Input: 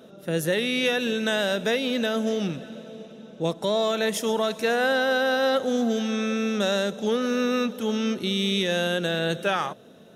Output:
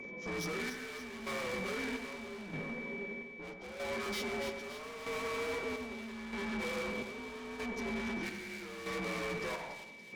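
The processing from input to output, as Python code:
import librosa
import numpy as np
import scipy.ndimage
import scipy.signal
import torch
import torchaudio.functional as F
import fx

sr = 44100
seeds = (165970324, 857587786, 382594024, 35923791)

p1 = fx.partial_stretch(x, sr, pct=82)
p2 = fx.level_steps(p1, sr, step_db=20)
p3 = p1 + F.gain(torch.from_numpy(p2), -0.5).numpy()
p4 = fx.tube_stage(p3, sr, drive_db=38.0, bias=0.45)
p5 = p4 + 10.0 ** (-45.0 / 20.0) * np.sin(2.0 * np.pi * 2300.0 * np.arange(len(p4)) / sr)
p6 = fx.chopper(p5, sr, hz=0.79, depth_pct=60, duty_pct=55)
y = p6 + fx.echo_split(p6, sr, split_hz=2200.0, low_ms=94, high_ms=285, feedback_pct=52, wet_db=-8, dry=0)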